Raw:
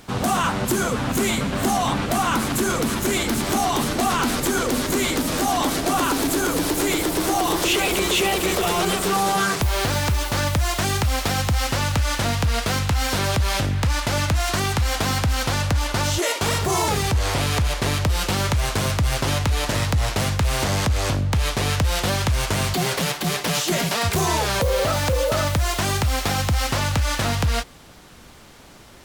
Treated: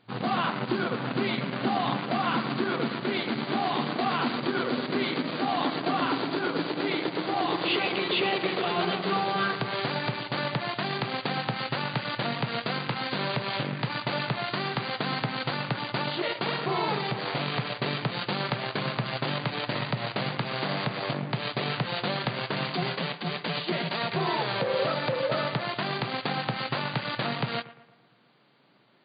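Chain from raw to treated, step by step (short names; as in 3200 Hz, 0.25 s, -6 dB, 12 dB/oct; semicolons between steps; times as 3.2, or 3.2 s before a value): analogue delay 0.115 s, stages 2048, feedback 55%, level -10.5 dB; added harmonics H 7 -20 dB, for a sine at -9.5 dBFS; FFT band-pass 110–4800 Hz; gain -5.5 dB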